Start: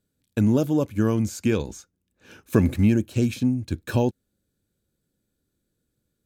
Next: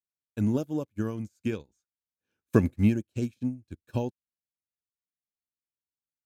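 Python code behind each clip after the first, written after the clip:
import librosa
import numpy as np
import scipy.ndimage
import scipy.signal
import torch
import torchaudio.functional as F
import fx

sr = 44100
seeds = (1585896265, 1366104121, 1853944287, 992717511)

y = fx.upward_expand(x, sr, threshold_db=-37.0, expansion=2.5)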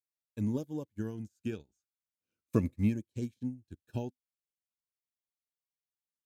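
y = fx.notch_cascade(x, sr, direction='falling', hz=0.4)
y = F.gain(torch.from_numpy(y), -6.0).numpy()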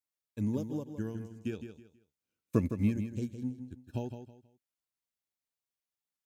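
y = fx.echo_feedback(x, sr, ms=161, feedback_pct=28, wet_db=-9)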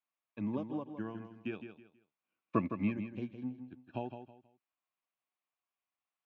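y = fx.cabinet(x, sr, low_hz=140.0, low_slope=24, high_hz=3200.0, hz=(150.0, 230.0, 450.0, 710.0, 1100.0, 2500.0), db=(-6, -4, -6, 7, 10, 5))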